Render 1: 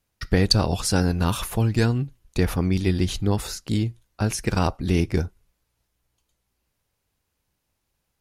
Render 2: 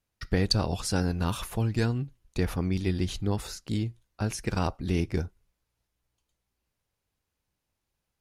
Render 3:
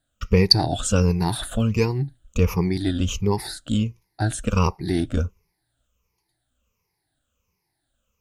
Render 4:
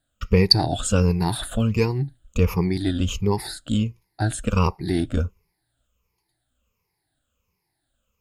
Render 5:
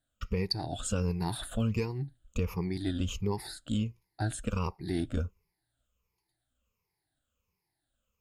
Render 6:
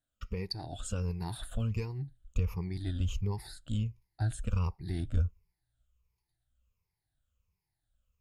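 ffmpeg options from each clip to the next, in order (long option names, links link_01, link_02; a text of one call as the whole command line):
ffmpeg -i in.wav -af "highshelf=frequency=11000:gain=-5,volume=-6dB" out.wav
ffmpeg -i in.wav -af "afftfilt=real='re*pow(10,19/40*sin(2*PI*(0.81*log(max(b,1)*sr/1024/100)/log(2)-(-1.4)*(pts-256)/sr)))':imag='im*pow(10,19/40*sin(2*PI*(0.81*log(max(b,1)*sr/1024/100)/log(2)-(-1.4)*(pts-256)/sr)))':win_size=1024:overlap=0.75,volume=3dB" out.wav
ffmpeg -i in.wav -af "bandreject=frequency=5900:width=6.6" out.wav
ffmpeg -i in.wav -af "alimiter=limit=-11.5dB:level=0:latency=1:release=478,volume=-7.5dB" out.wav
ffmpeg -i in.wav -af "asubboost=boost=5.5:cutoff=120,volume=-6dB" out.wav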